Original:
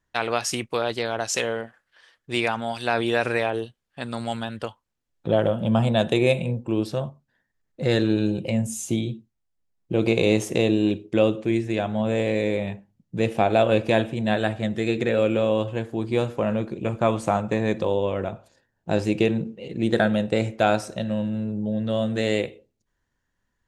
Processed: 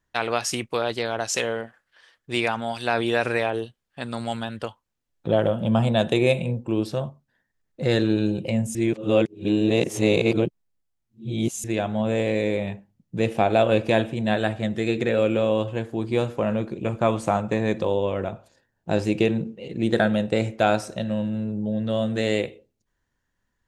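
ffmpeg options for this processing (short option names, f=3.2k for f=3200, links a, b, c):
-filter_complex "[0:a]asplit=3[a][b][c];[a]atrim=end=8.752[d];[b]atrim=start=8.748:end=11.642,asetpts=PTS-STARTPTS,areverse[e];[c]atrim=start=11.638[f];[d][e]acrossfade=d=0.004:c1=hsin:c2=hsin[g];[g][f]acrossfade=d=0.004:c1=hsin:c2=hsin"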